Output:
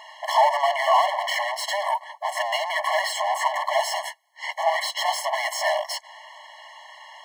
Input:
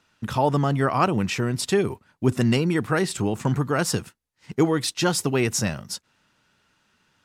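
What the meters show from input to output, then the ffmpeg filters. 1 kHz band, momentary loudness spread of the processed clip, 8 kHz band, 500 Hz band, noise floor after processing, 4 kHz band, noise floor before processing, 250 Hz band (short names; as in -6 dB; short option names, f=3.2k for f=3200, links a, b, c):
+7.0 dB, 23 LU, -3.5 dB, -1.0 dB, -49 dBFS, +3.5 dB, -68 dBFS, under -40 dB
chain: -filter_complex "[0:a]aeval=exprs='clip(val(0),-1,0.0841)':c=same,asplit=2[a][b];[b]highpass=f=720:p=1,volume=39dB,asoftclip=type=tanh:threshold=-6.5dB[c];[a][c]amix=inputs=2:normalize=0,lowpass=f=1.2k:p=1,volume=-6dB,afftfilt=real='re*eq(mod(floor(b*sr/1024/560),2),1)':imag='im*eq(mod(floor(b*sr/1024/560),2),1)':win_size=1024:overlap=0.75"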